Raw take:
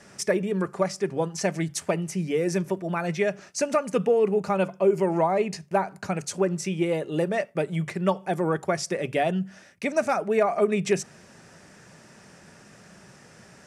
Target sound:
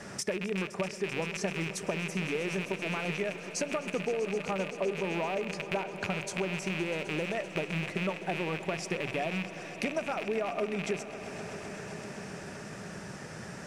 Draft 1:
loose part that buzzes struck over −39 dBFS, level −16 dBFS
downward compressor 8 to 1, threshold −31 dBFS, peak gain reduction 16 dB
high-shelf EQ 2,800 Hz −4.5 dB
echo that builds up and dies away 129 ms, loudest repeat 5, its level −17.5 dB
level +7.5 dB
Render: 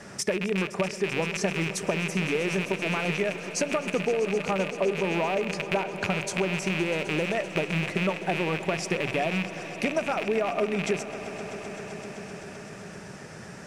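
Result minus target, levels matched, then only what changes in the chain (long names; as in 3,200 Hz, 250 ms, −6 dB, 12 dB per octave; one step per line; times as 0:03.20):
downward compressor: peak gain reduction −5.5 dB
change: downward compressor 8 to 1, threshold −37.5 dBFS, peak gain reduction 21.5 dB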